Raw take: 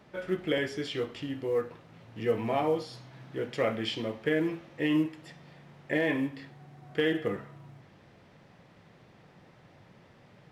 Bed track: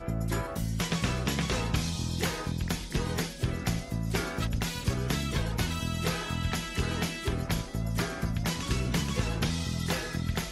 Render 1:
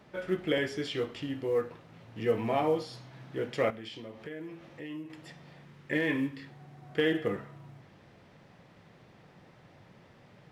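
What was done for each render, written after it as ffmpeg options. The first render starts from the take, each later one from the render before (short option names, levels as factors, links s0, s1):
-filter_complex "[0:a]asettb=1/sr,asplit=3[s0][s1][s2];[s0]atrim=end=3.704[s3];[s1]atrim=start=3.7:end=5.1,asetpts=PTS-STARTPTS,afade=t=in:d=0.004:c=qsin,afade=t=out:st=1.396:d=0.004:c=qsin,acompressor=threshold=0.00562:ratio=2.5:attack=3.2:release=140:knee=1:detection=peak[s4];[s2]atrim=start=5.096[s5];[s3][s4]acrossfade=d=0.004:c1=hsin:c2=qsin[s6];[s6][s5]acrossfade=d=0.004:c1=qsin:c2=hsin,asettb=1/sr,asplit=3[s7][s8][s9];[s7]atrim=end=5.654[s10];[s8]atrim=start=5.65:end=6.47,asetpts=PTS-STARTPTS,afade=t=in:d=0.004:c=qsin,afade=t=out:st=0.816:d=0.004:c=qsin,equalizer=f=690:t=o:w=0.51:g=-12[s11];[s9]atrim=start=6.466[s12];[s10][s11]acrossfade=d=0.004:c1=hsin:c2=qsin[s13];[s13][s12]acrossfade=d=0.004:c1=qsin:c2=hsin"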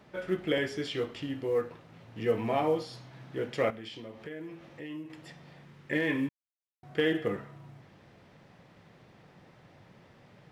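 -filter_complex "[0:a]asplit=3[s0][s1][s2];[s0]atrim=end=6.29,asetpts=PTS-STARTPTS,afade=t=out:st=6.286:d=0.004:c=hsin[s3];[s1]atrim=start=6.29:end=6.83,asetpts=PTS-STARTPTS,volume=0[s4];[s2]atrim=start=6.83,asetpts=PTS-STARTPTS,afade=t=in:d=0.004:c=hsin[s5];[s3][s4][s5]concat=n=3:v=0:a=1"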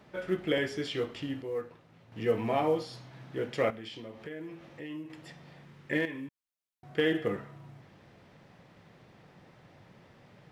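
-filter_complex "[0:a]asettb=1/sr,asplit=3[s0][s1][s2];[s0]atrim=end=6.054[s3];[s1]atrim=start=6.05:end=6.98,asetpts=PTS-STARTPTS,afade=t=in:d=0.004:c=qsin,afade=t=out:st=0.926:d=0.004:c=qsin,acompressor=threshold=0.00562:ratio=2:attack=3.2:release=140:knee=1:detection=peak[s4];[s2]atrim=start=6.976[s5];[s3][s4]acrossfade=d=0.004:c1=hsin:c2=qsin[s6];[s6][s5]acrossfade=d=0.004:c1=qsin:c2=hsin,asplit=3[s7][s8][s9];[s7]atrim=end=1.422[s10];[s8]atrim=start=1.418:end=2.122,asetpts=PTS-STARTPTS,volume=0.501[s11];[s9]atrim=start=2.118[s12];[s10][s11]acrossfade=d=0.004:c1=hsin:c2=hsin[s13];[s13][s12]acrossfade=d=0.004:c1=hsin:c2=hsin"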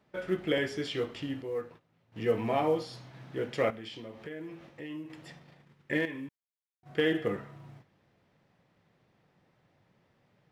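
-af "agate=range=0.251:threshold=0.00282:ratio=16:detection=peak"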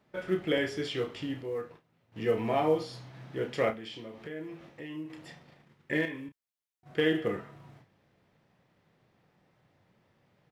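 -filter_complex "[0:a]asplit=2[s0][s1];[s1]adelay=32,volume=0.355[s2];[s0][s2]amix=inputs=2:normalize=0"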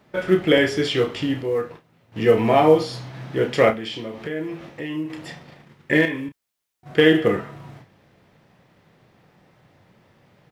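-af "volume=3.98"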